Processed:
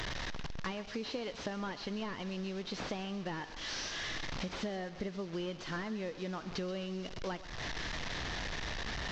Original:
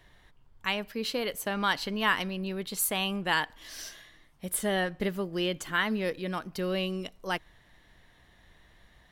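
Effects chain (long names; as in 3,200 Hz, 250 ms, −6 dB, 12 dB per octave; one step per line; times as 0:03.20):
linear delta modulator 32 kbit/s, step −38.5 dBFS
dynamic equaliser 1,900 Hz, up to −3 dB, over −43 dBFS, Q 0.73
downward compressor 10 to 1, threshold −42 dBFS, peak gain reduction 18 dB
on a send: feedback echo with a high-pass in the loop 130 ms, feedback 55%, level −14.5 dB
on the sum: level +6.5 dB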